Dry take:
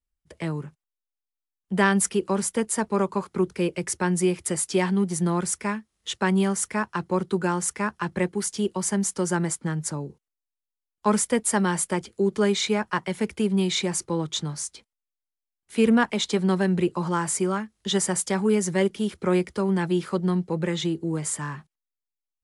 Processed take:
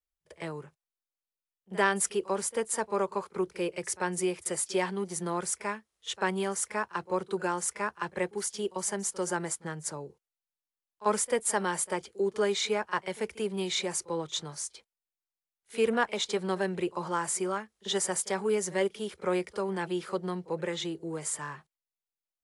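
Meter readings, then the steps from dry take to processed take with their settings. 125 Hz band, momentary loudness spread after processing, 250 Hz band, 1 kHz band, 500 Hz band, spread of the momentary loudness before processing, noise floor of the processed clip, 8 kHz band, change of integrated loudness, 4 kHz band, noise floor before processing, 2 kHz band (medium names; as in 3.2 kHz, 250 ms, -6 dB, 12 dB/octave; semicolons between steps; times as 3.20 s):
-13.5 dB, 8 LU, -11.5 dB, -3.5 dB, -4.5 dB, 8 LU, under -85 dBFS, -4.5 dB, -6.5 dB, -4.5 dB, under -85 dBFS, -4.0 dB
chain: resonant low shelf 340 Hz -7.5 dB, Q 1.5; pre-echo 43 ms -20 dB; trim -4.5 dB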